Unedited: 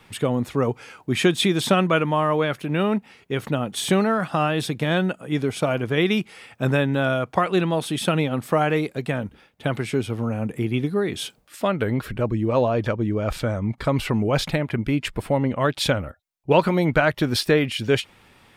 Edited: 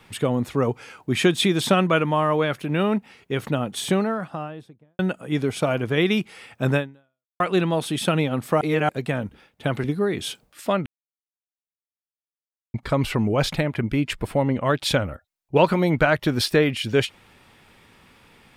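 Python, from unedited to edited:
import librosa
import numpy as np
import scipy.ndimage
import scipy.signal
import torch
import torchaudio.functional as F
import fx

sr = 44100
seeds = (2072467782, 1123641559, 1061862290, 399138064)

y = fx.studio_fade_out(x, sr, start_s=3.56, length_s=1.43)
y = fx.edit(y, sr, fx.fade_out_span(start_s=6.77, length_s=0.63, curve='exp'),
    fx.reverse_span(start_s=8.61, length_s=0.28),
    fx.cut(start_s=9.84, length_s=0.95),
    fx.silence(start_s=11.81, length_s=1.88), tone=tone)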